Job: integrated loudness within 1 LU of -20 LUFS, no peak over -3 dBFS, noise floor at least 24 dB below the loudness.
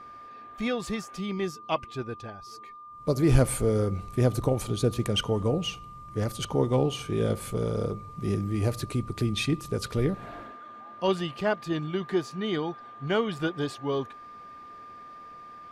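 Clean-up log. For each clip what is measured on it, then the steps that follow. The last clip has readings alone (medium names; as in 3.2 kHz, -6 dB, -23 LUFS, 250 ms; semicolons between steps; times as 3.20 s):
steady tone 1.2 kHz; tone level -43 dBFS; loudness -29.0 LUFS; peak level -7.0 dBFS; loudness target -20.0 LUFS
-> band-stop 1.2 kHz, Q 30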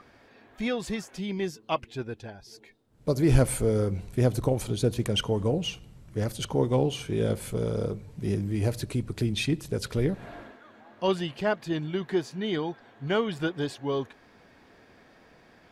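steady tone not found; loudness -29.0 LUFS; peak level -7.0 dBFS; loudness target -20.0 LUFS
-> trim +9 dB; peak limiter -3 dBFS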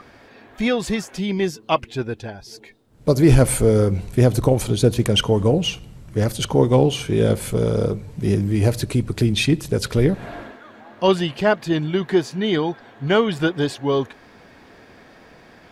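loudness -20.0 LUFS; peak level -3.0 dBFS; noise floor -48 dBFS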